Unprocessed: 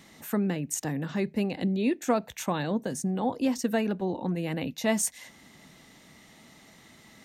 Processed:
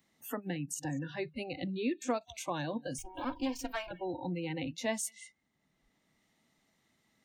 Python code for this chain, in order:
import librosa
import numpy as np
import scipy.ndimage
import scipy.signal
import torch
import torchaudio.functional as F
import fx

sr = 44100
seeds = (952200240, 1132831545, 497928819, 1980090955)

p1 = fx.lower_of_two(x, sr, delay_ms=3.2, at=(2.98, 3.91))
p2 = p1 + fx.echo_single(p1, sr, ms=192, db=-19.0, dry=0)
p3 = fx.noise_reduce_blind(p2, sr, reduce_db=27)
p4 = fx.band_squash(p3, sr, depth_pct=40)
y = p4 * librosa.db_to_amplitude(-5.0)